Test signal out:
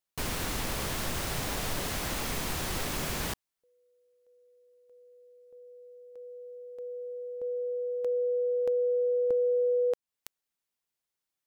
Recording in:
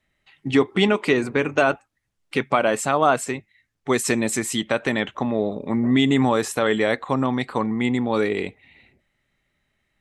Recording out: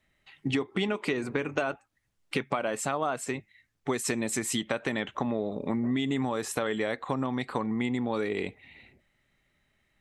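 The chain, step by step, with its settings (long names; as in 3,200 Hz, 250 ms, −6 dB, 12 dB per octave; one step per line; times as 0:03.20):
downward compressor 6 to 1, threshold −26 dBFS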